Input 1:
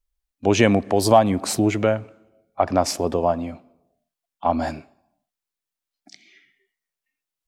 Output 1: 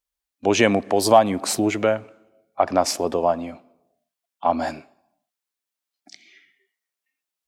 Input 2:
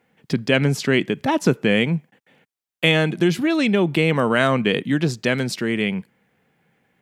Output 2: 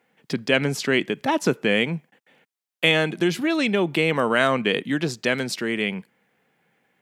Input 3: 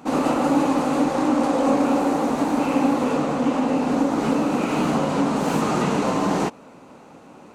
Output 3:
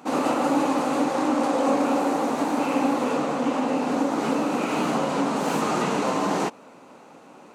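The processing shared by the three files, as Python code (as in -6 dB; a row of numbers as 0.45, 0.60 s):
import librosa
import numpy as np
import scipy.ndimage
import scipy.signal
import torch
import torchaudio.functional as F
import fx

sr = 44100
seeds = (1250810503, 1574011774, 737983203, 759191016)

y = fx.highpass(x, sr, hz=300.0, slope=6)
y = y * 10.0 ** (-24 / 20.0) / np.sqrt(np.mean(np.square(y)))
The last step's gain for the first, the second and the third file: +1.5, -0.5, -0.5 dB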